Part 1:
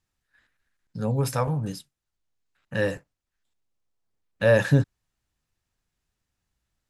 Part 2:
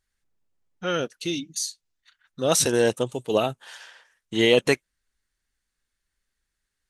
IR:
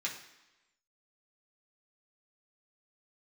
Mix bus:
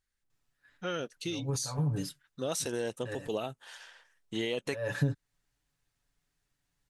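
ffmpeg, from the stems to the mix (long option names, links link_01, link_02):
-filter_complex "[0:a]aecho=1:1:7:0.79,acompressor=threshold=-22dB:ratio=8,adelay=300,volume=-3dB[link_01];[1:a]acompressor=threshold=-25dB:ratio=4,volume=-6dB,asplit=2[link_02][link_03];[link_03]apad=whole_len=317822[link_04];[link_01][link_04]sidechaincompress=threshold=-52dB:ratio=5:attack=11:release=101[link_05];[link_05][link_02]amix=inputs=2:normalize=0"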